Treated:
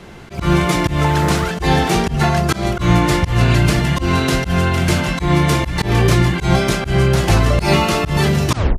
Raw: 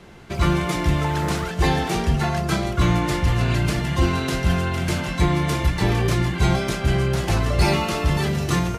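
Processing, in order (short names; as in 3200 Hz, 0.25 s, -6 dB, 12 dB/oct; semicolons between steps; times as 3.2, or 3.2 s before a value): tape stop at the end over 0.30 s; auto swell 0.135 s; gain +7.5 dB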